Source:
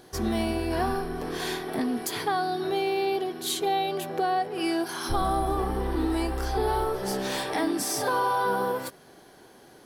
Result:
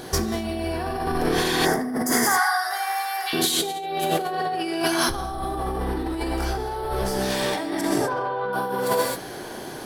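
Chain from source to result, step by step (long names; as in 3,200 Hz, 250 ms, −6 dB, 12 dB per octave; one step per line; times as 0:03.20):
0:02.12–0:03.33: Bessel high-pass filter 1,400 Hz, order 6
0:07.81–0:08.53: high-frequency loss of the air 400 metres
reverb whose tail is shaped and stops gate 290 ms flat, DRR 0.5 dB
0:01.66–0:03.27: gain on a spectral selection 2,200–4,700 Hz −17 dB
compressor whose output falls as the input rises −33 dBFS, ratio −1
level +8 dB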